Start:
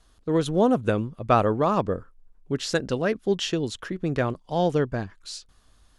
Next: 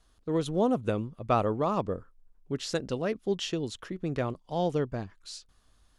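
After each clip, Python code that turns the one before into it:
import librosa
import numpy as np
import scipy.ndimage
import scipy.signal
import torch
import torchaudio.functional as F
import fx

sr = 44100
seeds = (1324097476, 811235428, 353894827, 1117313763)

y = fx.dynamic_eq(x, sr, hz=1600.0, q=4.5, threshold_db=-47.0, ratio=4.0, max_db=-6)
y = y * librosa.db_to_amplitude(-5.5)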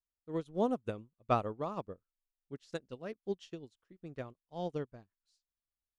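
y = fx.upward_expand(x, sr, threshold_db=-44.0, expansion=2.5)
y = y * librosa.db_to_amplitude(-2.5)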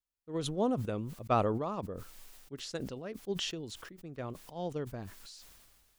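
y = fx.sustainer(x, sr, db_per_s=31.0)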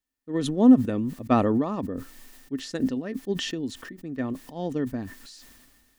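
y = fx.small_body(x, sr, hz=(260.0, 1800.0), ring_ms=60, db=16)
y = y * librosa.db_to_amplitude(4.0)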